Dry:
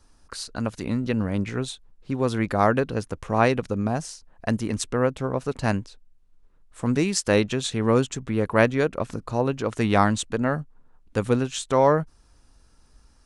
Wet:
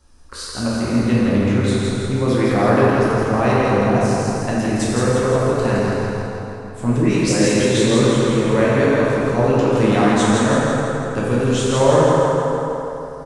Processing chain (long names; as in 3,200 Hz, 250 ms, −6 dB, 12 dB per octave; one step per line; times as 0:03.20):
brickwall limiter −11.5 dBFS, peak gain reduction 8 dB
0:06.97–0:08.22: all-pass dispersion highs, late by 128 ms, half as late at 1,900 Hz
repeating echo 165 ms, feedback 54%, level −4 dB
dense smooth reverb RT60 3.1 s, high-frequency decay 0.6×, DRR −6.5 dB